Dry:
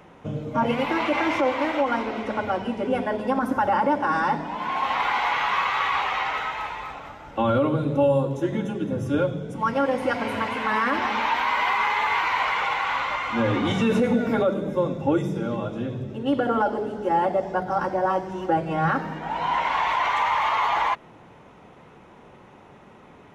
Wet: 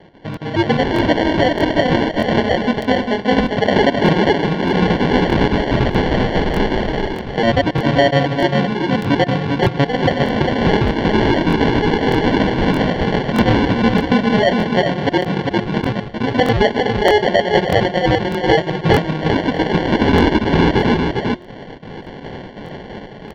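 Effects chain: random spectral dropouts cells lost 36%; in parallel at +1 dB: compressor, threshold -32 dBFS, peak gain reduction 14.5 dB; on the sum: HPF 61 Hz 12 dB/oct; sample-and-hold 35×; LPF 4000 Hz 24 dB/oct; de-hum 355.5 Hz, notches 29; on a send: echo 0.4 s -4.5 dB; on the sum: AGC gain up to 13 dB; crackling interface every 0.62 s, samples 1024, repeat, from 0.32; gain -1 dB

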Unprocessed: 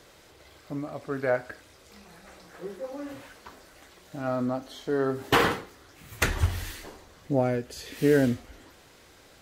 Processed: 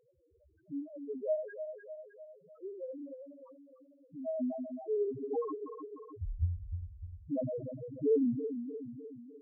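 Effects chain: regenerating reverse delay 0.151 s, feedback 74%, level -7 dB; loudest bins only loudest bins 1; ending taper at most 170 dB/s

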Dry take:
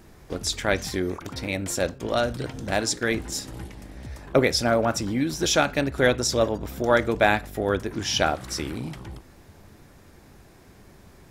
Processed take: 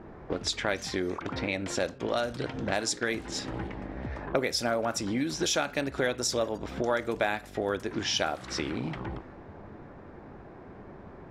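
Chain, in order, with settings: low-pass opened by the level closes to 1100 Hz, open at -19.5 dBFS; low shelf 150 Hz -10.5 dB; compressor 3:1, threshold -39 dBFS, peak gain reduction 18 dB; gain +8.5 dB

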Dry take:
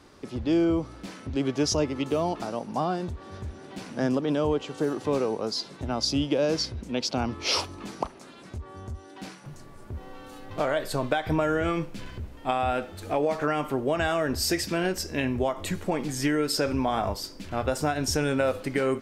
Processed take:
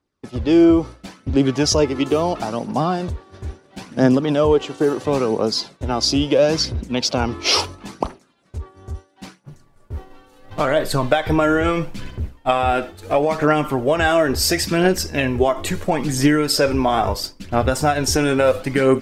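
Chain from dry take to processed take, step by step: expander -33 dBFS; phaser 0.74 Hz, delay 3.1 ms, feedback 37%; gain +8 dB

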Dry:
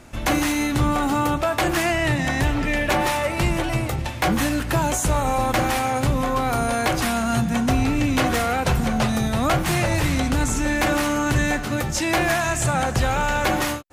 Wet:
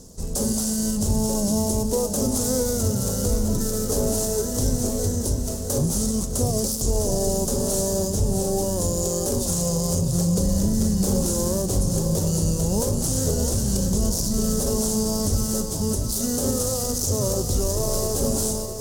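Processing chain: switching dead time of 0.078 ms; EQ curve 630 Hz 0 dB, 2900 Hz -25 dB, 8400 Hz +11 dB; limiter -14 dBFS, peak gain reduction 8 dB; reverse; upward compressor, threshold -29 dBFS; reverse; speed mistake 45 rpm record played at 33 rpm; lo-fi delay 0.657 s, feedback 55%, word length 9-bit, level -8 dB

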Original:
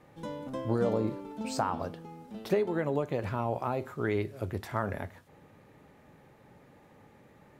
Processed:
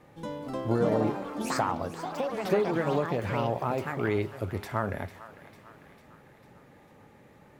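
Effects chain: echoes that change speed 0.309 s, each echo +5 st, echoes 3, each echo -6 dB; thinning echo 0.449 s, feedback 63%, high-pass 810 Hz, level -14 dB; gain +2 dB

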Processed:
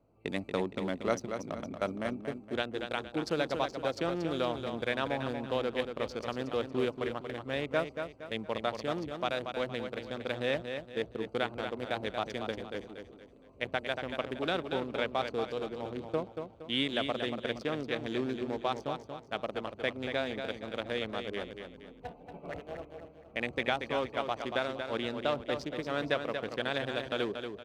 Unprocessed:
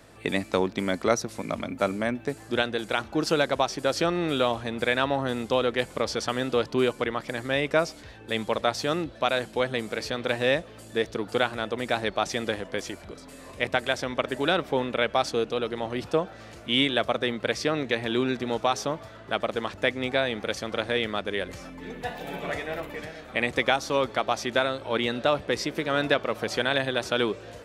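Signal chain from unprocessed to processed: Wiener smoothing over 25 samples; gate -35 dBFS, range -7 dB; feedback echo 0.233 s, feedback 38%, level -7 dB; gain -7.5 dB

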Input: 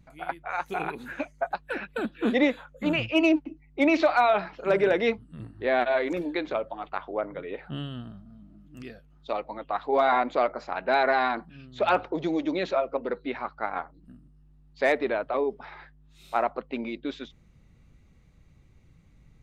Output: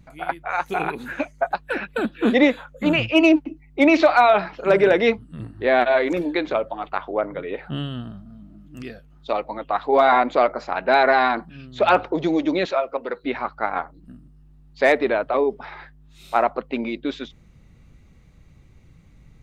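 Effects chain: 12.65–13.24 low shelf 380 Hz -12 dB; gain +6.5 dB

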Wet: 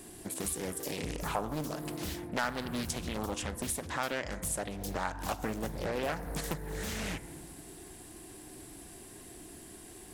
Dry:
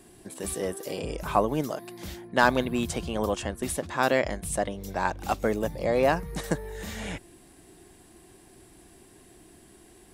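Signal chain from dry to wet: high shelf 6500 Hz +8 dB; FDN reverb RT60 1.4 s, low-frequency decay 1.45×, high-frequency decay 0.3×, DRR 13 dB; dynamic EQ 490 Hz, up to -6 dB, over -37 dBFS, Q 0.86; compressor 2.5:1, threshold -37 dBFS, peak gain reduction 14 dB; Doppler distortion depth 0.8 ms; gain +2.5 dB

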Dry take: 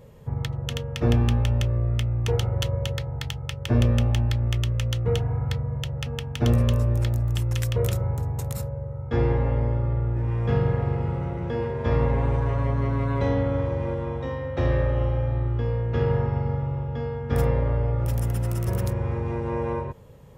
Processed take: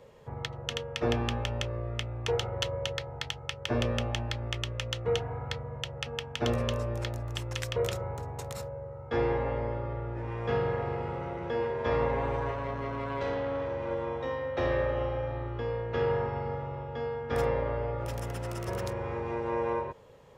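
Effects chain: three-band isolator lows -13 dB, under 340 Hz, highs -13 dB, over 7300 Hz; 12.51–13.91 tube stage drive 27 dB, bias 0.4

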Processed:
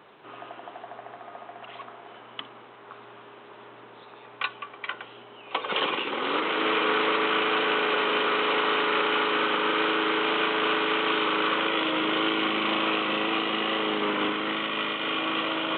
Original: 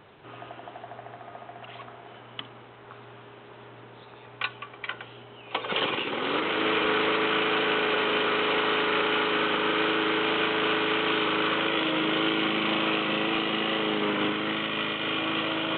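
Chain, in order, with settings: HPF 210 Hz 12 dB/oct; bell 1100 Hz +3.5 dB 0.5 oct

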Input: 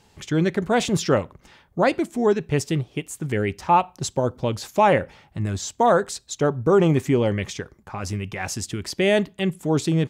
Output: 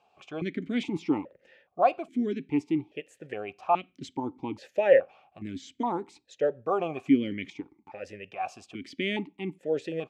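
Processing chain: vowel sequencer 2.4 Hz; gain +4.5 dB

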